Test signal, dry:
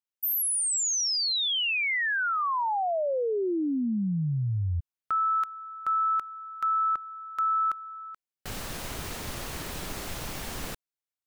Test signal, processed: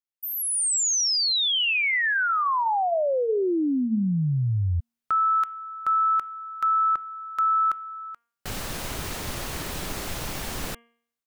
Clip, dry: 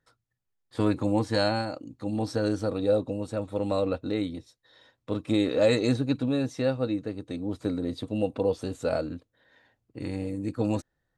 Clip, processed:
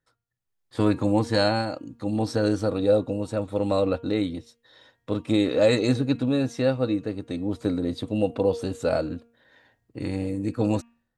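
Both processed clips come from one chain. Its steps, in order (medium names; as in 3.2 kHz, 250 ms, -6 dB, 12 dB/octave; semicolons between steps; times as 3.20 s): de-hum 234 Hz, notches 14; level rider gain up to 9 dB; trim -5 dB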